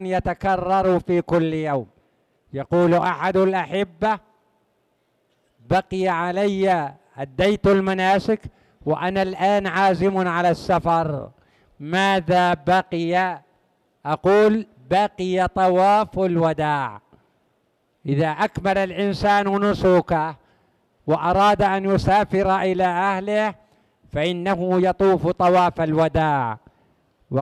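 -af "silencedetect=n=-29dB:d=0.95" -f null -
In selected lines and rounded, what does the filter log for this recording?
silence_start: 4.16
silence_end: 5.71 | silence_duration: 1.55
silence_start: 16.96
silence_end: 18.06 | silence_duration: 1.09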